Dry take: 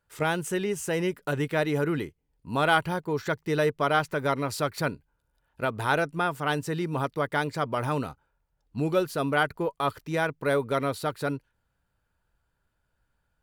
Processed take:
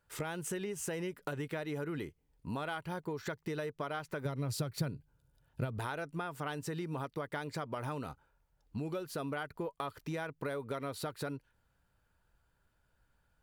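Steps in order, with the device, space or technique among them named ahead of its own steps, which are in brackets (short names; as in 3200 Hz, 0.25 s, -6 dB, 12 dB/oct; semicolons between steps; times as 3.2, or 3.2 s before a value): serial compression, peaks first (compressor, threshold -32 dBFS, peak gain reduction 14 dB; compressor 2:1, threshold -39 dBFS, peak gain reduction 5.5 dB); 4.25–5.79 graphic EQ 125/1000/2000 Hz +11/-5/-4 dB; gain +1 dB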